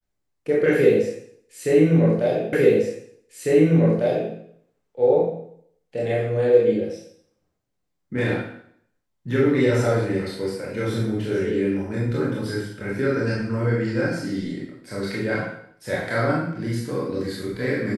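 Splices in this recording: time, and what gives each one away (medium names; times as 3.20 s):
2.53 s: repeat of the last 1.8 s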